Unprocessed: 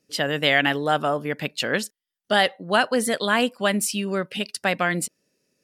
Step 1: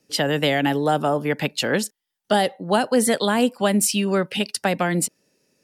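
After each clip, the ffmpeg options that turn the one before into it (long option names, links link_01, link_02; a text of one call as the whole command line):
ffmpeg -i in.wav -filter_complex "[0:a]equalizer=frequency=850:width_type=o:width=0.25:gain=7.5,acrossover=split=340|520|5500[link_01][link_02][link_03][link_04];[link_03]acompressor=threshold=-28dB:ratio=6[link_05];[link_01][link_02][link_05][link_04]amix=inputs=4:normalize=0,volume=5dB" out.wav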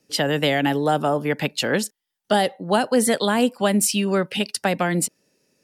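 ffmpeg -i in.wav -af anull out.wav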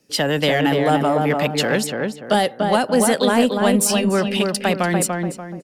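ffmpeg -i in.wav -filter_complex "[0:a]asplit=2[link_01][link_02];[link_02]asoftclip=type=tanh:threshold=-23.5dB,volume=-6.5dB[link_03];[link_01][link_03]amix=inputs=2:normalize=0,asplit=2[link_04][link_05];[link_05]adelay=291,lowpass=frequency=1700:poles=1,volume=-3dB,asplit=2[link_06][link_07];[link_07]adelay=291,lowpass=frequency=1700:poles=1,volume=0.38,asplit=2[link_08][link_09];[link_09]adelay=291,lowpass=frequency=1700:poles=1,volume=0.38,asplit=2[link_10][link_11];[link_11]adelay=291,lowpass=frequency=1700:poles=1,volume=0.38,asplit=2[link_12][link_13];[link_13]adelay=291,lowpass=frequency=1700:poles=1,volume=0.38[link_14];[link_04][link_06][link_08][link_10][link_12][link_14]amix=inputs=6:normalize=0" out.wav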